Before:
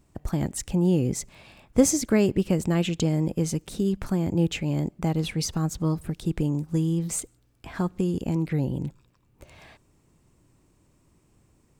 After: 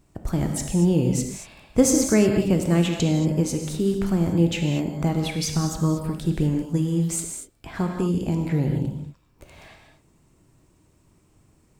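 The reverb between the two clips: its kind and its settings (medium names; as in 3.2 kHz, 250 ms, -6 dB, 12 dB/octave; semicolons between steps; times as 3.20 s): gated-style reverb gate 260 ms flat, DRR 3 dB; trim +1.5 dB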